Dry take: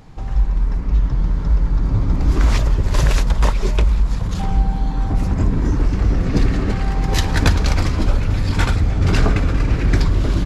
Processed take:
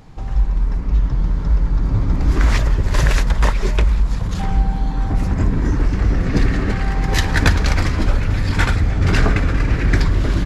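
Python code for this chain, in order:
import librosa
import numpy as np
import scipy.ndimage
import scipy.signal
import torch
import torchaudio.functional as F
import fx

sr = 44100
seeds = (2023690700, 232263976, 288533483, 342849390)

y = fx.dynamic_eq(x, sr, hz=1800.0, q=2.0, threshold_db=-43.0, ratio=4.0, max_db=6)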